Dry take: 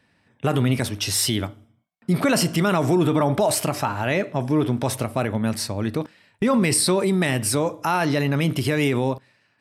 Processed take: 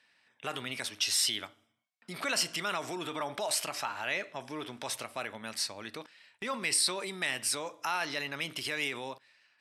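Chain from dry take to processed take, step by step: in parallel at 0 dB: compressor, threshold -33 dBFS, peak gain reduction 16.5 dB; on the sum: band-pass 3900 Hz, Q 0.54; gain -5.5 dB

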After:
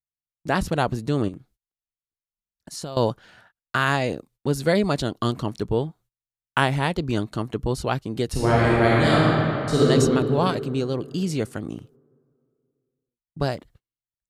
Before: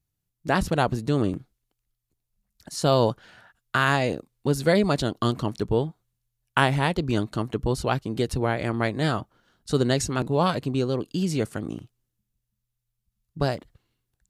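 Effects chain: gate -52 dBFS, range -26 dB; 1.28–2.97 compressor 6:1, threshold -32 dBFS, peak gain reduction 15.5 dB; 8.3–9.86 reverb throw, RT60 2.8 s, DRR -7.5 dB

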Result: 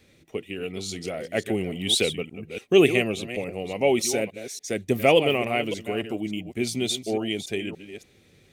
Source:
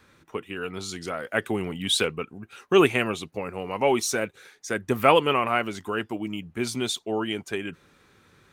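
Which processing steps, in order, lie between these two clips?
reverse delay 0.287 s, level -11 dB; band shelf 1200 Hz -14.5 dB 1.1 oct; gain +1.5 dB

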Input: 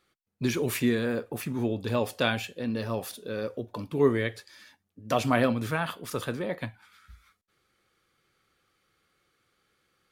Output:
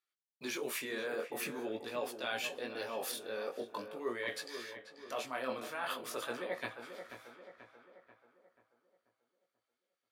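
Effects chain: expander -53 dBFS; HPF 480 Hz 12 dB/oct; reverse; compressor 6:1, threshold -41 dBFS, peak gain reduction 19 dB; reverse; chorus 0.46 Hz, delay 16 ms, depth 7.5 ms; on a send: darkening echo 0.486 s, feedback 46%, low-pass 1800 Hz, level -9 dB; on the sum: mismatched tape noise reduction encoder only; gain +7.5 dB

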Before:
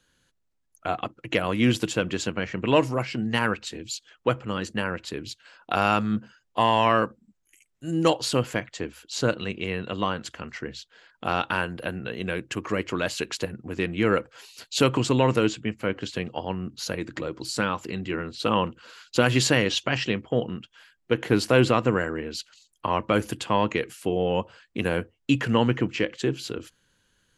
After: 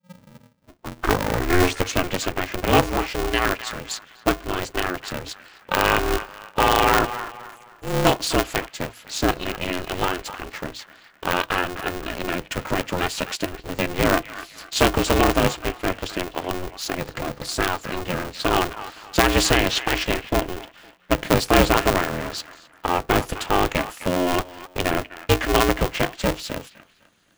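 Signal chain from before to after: tape start at the beginning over 2.15 s; band-limited delay 0.255 s, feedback 35%, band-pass 1400 Hz, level -11 dB; polarity switched at an audio rate 180 Hz; gain +3 dB

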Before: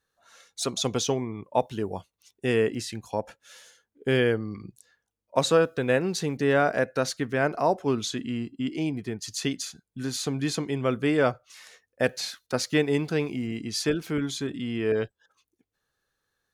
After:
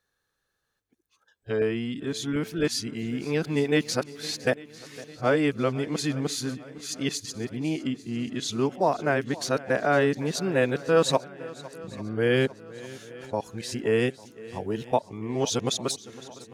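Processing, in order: whole clip reversed; swung echo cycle 0.848 s, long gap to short 1.5:1, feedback 51%, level -19 dB

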